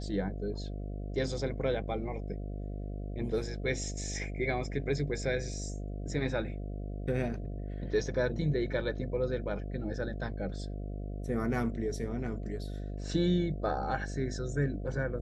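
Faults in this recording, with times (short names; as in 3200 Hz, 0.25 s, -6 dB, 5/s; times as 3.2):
buzz 50 Hz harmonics 14 -38 dBFS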